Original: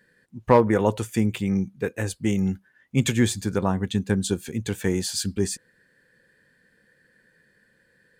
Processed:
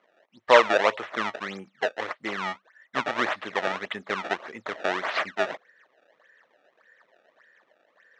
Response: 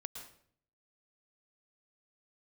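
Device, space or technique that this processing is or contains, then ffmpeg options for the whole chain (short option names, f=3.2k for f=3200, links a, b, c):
circuit-bent sampling toy: -af "acrusher=samples=24:mix=1:aa=0.000001:lfo=1:lforange=38.4:lforate=1.7,highpass=570,equalizer=f=620:t=q:w=4:g=8,equalizer=f=1.2k:t=q:w=4:g=5,equalizer=f=1.9k:t=q:w=4:g=7,equalizer=f=4.7k:t=q:w=4:g=-8,lowpass=f=5k:w=0.5412,lowpass=f=5k:w=1.3066"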